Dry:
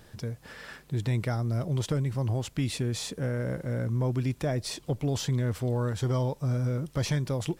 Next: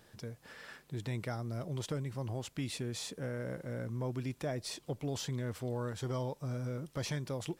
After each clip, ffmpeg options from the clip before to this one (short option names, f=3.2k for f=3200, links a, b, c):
-af "lowshelf=f=120:g=-10,volume=-6dB"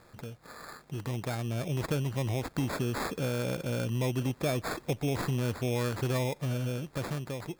-filter_complex "[0:a]asplit=2[a][b];[b]acompressor=threshold=-44dB:ratio=6,volume=2dB[c];[a][c]amix=inputs=2:normalize=0,acrusher=samples=15:mix=1:aa=0.000001,dynaudnorm=f=370:g=7:m=7dB,volume=-3dB"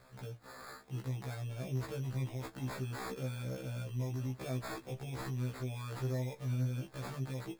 -af "alimiter=level_in=7dB:limit=-24dB:level=0:latency=1:release=35,volume=-7dB,flanger=delay=7.5:depth=1.6:regen=56:speed=1.8:shape=sinusoidal,afftfilt=real='re*1.73*eq(mod(b,3),0)':imag='im*1.73*eq(mod(b,3),0)':win_size=2048:overlap=0.75,volume=3dB"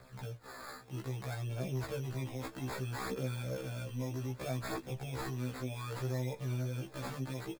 -filter_complex "[0:a]aphaser=in_gain=1:out_gain=1:delay=4.1:decay=0.36:speed=0.63:type=triangular,acrossover=split=220[a][b];[a]asoftclip=type=tanh:threshold=-37.5dB[c];[c][b]amix=inputs=2:normalize=0,aecho=1:1:594:0.0891,volume=2dB"